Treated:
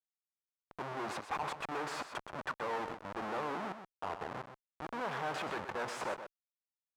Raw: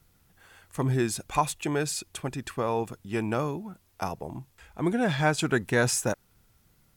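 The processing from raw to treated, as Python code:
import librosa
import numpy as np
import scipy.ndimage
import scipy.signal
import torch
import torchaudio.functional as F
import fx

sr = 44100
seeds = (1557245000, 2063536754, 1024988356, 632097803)

p1 = fx.leveller(x, sr, passes=1)
p2 = fx.auto_swell(p1, sr, attack_ms=194.0)
p3 = fx.schmitt(p2, sr, flips_db=-35.0)
p4 = fx.bandpass_q(p3, sr, hz=1000.0, q=1.2)
p5 = p4 + fx.echo_single(p4, sr, ms=126, db=-9.5, dry=0)
y = p5 * 10.0 ** (-1.5 / 20.0)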